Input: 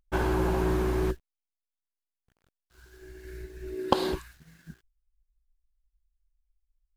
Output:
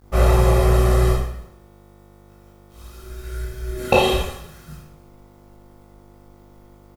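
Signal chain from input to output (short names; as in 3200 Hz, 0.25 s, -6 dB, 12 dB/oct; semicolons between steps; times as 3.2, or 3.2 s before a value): high shelf 9800 Hz +5 dB; comb 1.6 ms, depth 93%; buzz 50 Hz, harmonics 30, -56 dBFS -5 dB/oct; outdoor echo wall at 47 m, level -25 dB; bit-crush 11-bit; formant shift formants -3 st; reverb RT60 0.75 s, pre-delay 12 ms, DRR -6.5 dB; gain +2 dB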